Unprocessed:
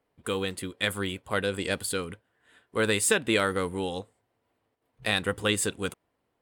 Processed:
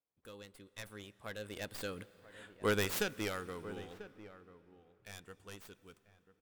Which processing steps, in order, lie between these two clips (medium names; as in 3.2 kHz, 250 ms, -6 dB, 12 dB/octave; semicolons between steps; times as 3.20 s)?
tracing distortion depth 0.28 ms; Doppler pass-by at 2.38 s, 18 m/s, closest 1.7 m; echo from a far wall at 170 m, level -14 dB; on a send at -20 dB: reverberation RT60 4.3 s, pre-delay 117 ms; on the sum: trim +5 dB